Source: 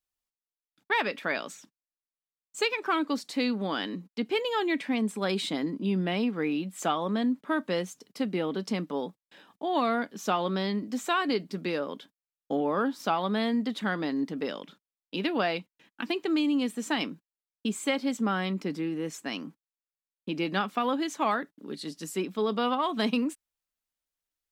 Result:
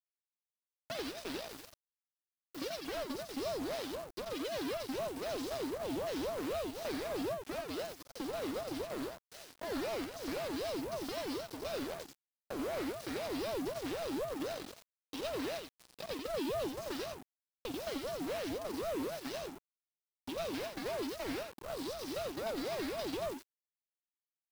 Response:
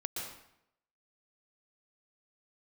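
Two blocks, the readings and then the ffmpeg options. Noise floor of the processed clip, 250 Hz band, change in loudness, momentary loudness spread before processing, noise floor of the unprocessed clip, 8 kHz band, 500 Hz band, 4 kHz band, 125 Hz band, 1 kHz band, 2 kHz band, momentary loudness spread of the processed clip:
under -85 dBFS, -12.0 dB, -9.5 dB, 9 LU, under -85 dBFS, -5.0 dB, -6.0 dB, -8.5 dB, -12.5 dB, -13.0 dB, -12.5 dB, 7 LU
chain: -filter_complex "[0:a]highpass=f=180:w=0.5412,highpass=f=180:w=1.3066,aeval=exprs='abs(val(0))':c=same,superequalizer=13b=2:14b=3.55,acompressor=threshold=0.0141:ratio=6,asoftclip=type=tanh:threshold=0.0376,acrusher=bits=5:mode=log:mix=0:aa=0.000001,acrossover=split=5300[s0][s1];[s1]acompressor=threshold=0.00126:ratio=4:attack=1:release=60[s2];[s0][s2]amix=inputs=2:normalize=0,acrusher=bits=5:dc=4:mix=0:aa=0.000001,aecho=1:1:48|88:0.299|0.668,aeval=exprs='val(0)*sin(2*PI*470*n/s+470*0.45/3.9*sin(2*PI*3.9*n/s))':c=same,volume=1.12"

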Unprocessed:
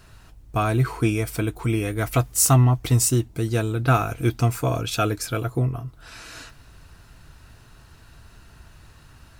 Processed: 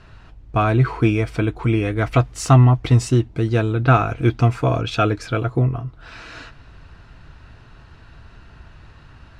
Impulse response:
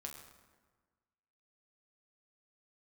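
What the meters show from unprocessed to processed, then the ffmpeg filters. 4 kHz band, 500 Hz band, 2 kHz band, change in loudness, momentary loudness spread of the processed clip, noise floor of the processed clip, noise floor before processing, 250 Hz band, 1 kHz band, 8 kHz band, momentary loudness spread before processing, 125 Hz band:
0.0 dB, +4.5 dB, +4.0 dB, +3.5 dB, 9 LU, -46 dBFS, -50 dBFS, +4.5 dB, +4.5 dB, -11.0 dB, 16 LU, +4.5 dB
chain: -af "lowpass=3400,volume=1.68"

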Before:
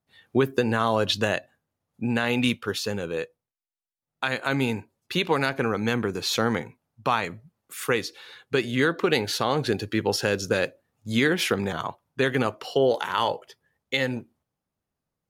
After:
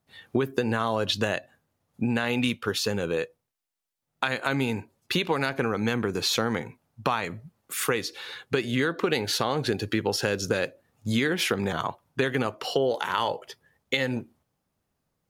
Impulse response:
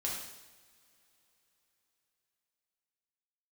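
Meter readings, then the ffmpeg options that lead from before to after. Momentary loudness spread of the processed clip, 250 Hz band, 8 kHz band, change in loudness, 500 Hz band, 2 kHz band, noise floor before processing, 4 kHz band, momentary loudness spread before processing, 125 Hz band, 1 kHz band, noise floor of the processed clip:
8 LU, -1.5 dB, +1.0 dB, -1.5 dB, -2.5 dB, -2.0 dB, under -85 dBFS, -0.5 dB, 10 LU, -1.0 dB, -2.0 dB, -80 dBFS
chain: -af "acompressor=threshold=0.0282:ratio=3,volume=2.11"

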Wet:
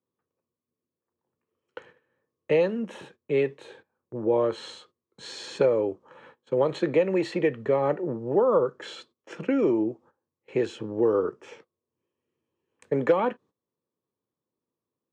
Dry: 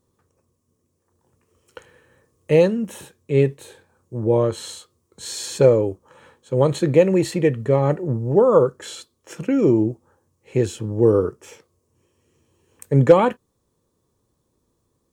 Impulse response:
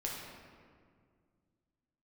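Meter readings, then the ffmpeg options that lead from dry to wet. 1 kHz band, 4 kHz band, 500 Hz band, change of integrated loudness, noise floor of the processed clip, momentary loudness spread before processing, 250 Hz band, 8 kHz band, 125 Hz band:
-5.0 dB, -6.0 dB, -6.0 dB, -7.0 dB, under -85 dBFS, 16 LU, -7.0 dB, under -15 dB, -16.0 dB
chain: -filter_complex "[0:a]acrossover=split=280|690[s0][s1][s2];[s0]acompressor=threshold=0.02:ratio=4[s3];[s1]acompressor=threshold=0.0708:ratio=4[s4];[s2]acompressor=threshold=0.0447:ratio=4[s5];[s3][s4][s5]amix=inputs=3:normalize=0,agate=range=0.158:threshold=0.00316:ratio=16:detection=peak,highpass=170,lowpass=3200"

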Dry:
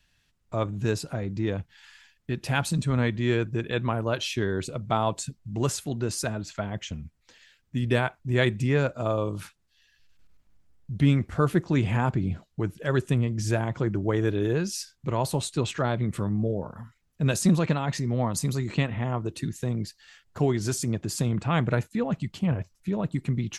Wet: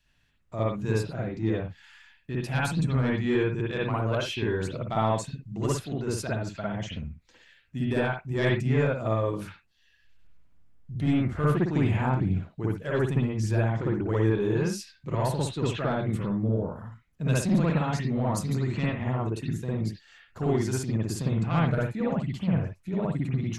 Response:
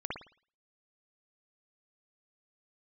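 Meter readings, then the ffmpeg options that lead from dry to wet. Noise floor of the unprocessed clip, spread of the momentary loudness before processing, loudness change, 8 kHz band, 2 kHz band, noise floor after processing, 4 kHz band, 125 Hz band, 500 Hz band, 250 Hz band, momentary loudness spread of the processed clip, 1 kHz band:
-70 dBFS, 9 LU, -0.5 dB, -6.0 dB, -1.5 dB, -65 dBFS, -4.0 dB, -0.5 dB, 0.0 dB, 0.0 dB, 8 LU, -0.5 dB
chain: -filter_complex "[0:a]asoftclip=type=tanh:threshold=0.188[s0];[1:a]atrim=start_sample=2205,afade=t=out:st=0.18:d=0.01,atrim=end_sample=8379[s1];[s0][s1]afir=irnorm=-1:irlink=0,volume=0.75"

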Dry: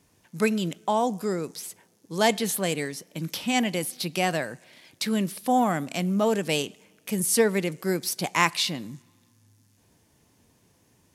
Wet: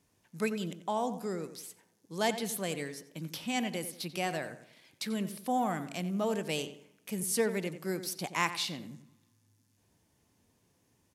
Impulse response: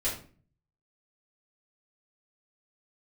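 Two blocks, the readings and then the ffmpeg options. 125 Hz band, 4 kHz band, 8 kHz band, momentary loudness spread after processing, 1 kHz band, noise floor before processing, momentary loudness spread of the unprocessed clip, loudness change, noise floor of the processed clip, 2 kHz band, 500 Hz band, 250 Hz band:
-8.5 dB, -8.5 dB, -8.5 dB, 13 LU, -8.0 dB, -64 dBFS, 13 LU, -8.0 dB, -72 dBFS, -8.5 dB, -8.0 dB, -8.5 dB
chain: -filter_complex "[0:a]asplit=2[s0][s1];[s1]adelay=90,lowpass=f=2500:p=1,volume=0.282,asplit=2[s2][s3];[s3]adelay=90,lowpass=f=2500:p=1,volume=0.38,asplit=2[s4][s5];[s5]adelay=90,lowpass=f=2500:p=1,volume=0.38,asplit=2[s6][s7];[s7]adelay=90,lowpass=f=2500:p=1,volume=0.38[s8];[s0][s2][s4][s6][s8]amix=inputs=5:normalize=0,volume=0.376"

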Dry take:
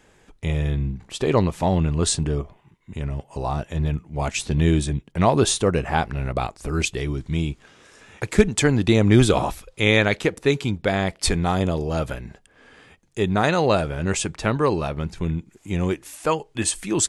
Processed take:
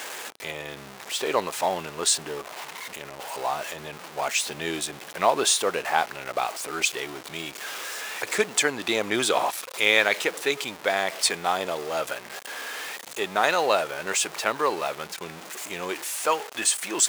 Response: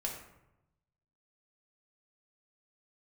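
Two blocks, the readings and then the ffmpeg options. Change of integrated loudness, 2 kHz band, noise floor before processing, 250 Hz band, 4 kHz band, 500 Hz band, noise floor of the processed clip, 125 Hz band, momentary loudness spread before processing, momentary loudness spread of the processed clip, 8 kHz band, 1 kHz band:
-3.5 dB, +1.5 dB, -58 dBFS, -13.5 dB, +2.0 dB, -4.5 dB, -43 dBFS, -24.5 dB, 11 LU, 14 LU, +2.0 dB, +0.5 dB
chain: -af "aeval=exprs='val(0)+0.5*0.0376*sgn(val(0))':c=same,highpass=610"

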